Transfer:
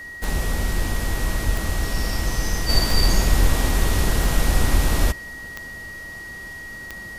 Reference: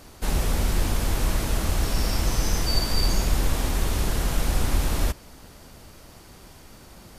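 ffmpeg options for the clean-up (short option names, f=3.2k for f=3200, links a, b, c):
-filter_complex "[0:a]adeclick=t=4,bandreject=f=1.9k:w=30,asplit=3[a][b][c];[a]afade=t=out:st=1.45:d=0.02[d];[b]highpass=f=140:w=0.5412,highpass=f=140:w=1.3066,afade=t=in:st=1.45:d=0.02,afade=t=out:st=1.57:d=0.02[e];[c]afade=t=in:st=1.57:d=0.02[f];[d][e][f]amix=inputs=3:normalize=0,asplit=3[g][h][i];[g]afade=t=out:st=3.39:d=0.02[j];[h]highpass=f=140:w=0.5412,highpass=f=140:w=1.3066,afade=t=in:st=3.39:d=0.02,afade=t=out:st=3.51:d=0.02[k];[i]afade=t=in:st=3.51:d=0.02[l];[j][k][l]amix=inputs=3:normalize=0,asplit=3[m][n][o];[m]afade=t=out:st=3.95:d=0.02[p];[n]highpass=f=140:w=0.5412,highpass=f=140:w=1.3066,afade=t=in:st=3.95:d=0.02,afade=t=out:st=4.07:d=0.02[q];[o]afade=t=in:st=4.07:d=0.02[r];[p][q][r]amix=inputs=3:normalize=0,asetnsamples=n=441:p=0,asendcmd='2.69 volume volume -4.5dB',volume=0dB"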